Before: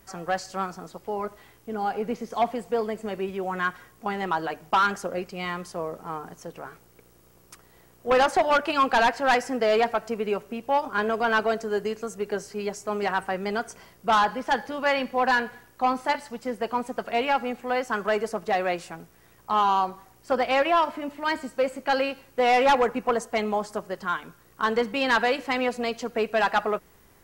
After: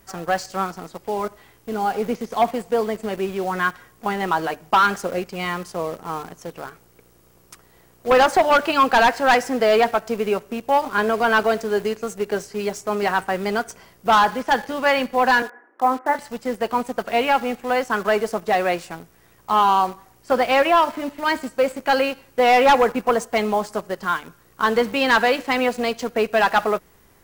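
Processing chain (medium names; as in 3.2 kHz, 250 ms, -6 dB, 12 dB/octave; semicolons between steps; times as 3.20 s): 15.42–16.19 s: elliptic band-pass 270–1800 Hz, stop band 40 dB; in parallel at -7 dB: bit crusher 6-bit; on the sum: trim +2 dB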